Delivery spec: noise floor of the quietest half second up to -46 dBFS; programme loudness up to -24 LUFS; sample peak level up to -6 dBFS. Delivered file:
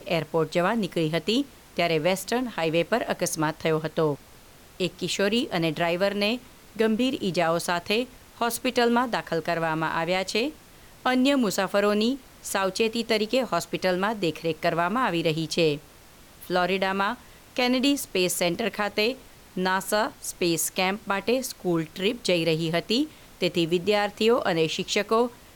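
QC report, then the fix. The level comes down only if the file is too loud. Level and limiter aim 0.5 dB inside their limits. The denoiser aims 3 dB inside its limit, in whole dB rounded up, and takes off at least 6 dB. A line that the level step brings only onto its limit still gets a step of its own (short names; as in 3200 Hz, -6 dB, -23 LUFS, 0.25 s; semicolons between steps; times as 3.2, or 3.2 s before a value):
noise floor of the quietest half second -51 dBFS: OK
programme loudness -25.5 LUFS: OK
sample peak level -11.0 dBFS: OK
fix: none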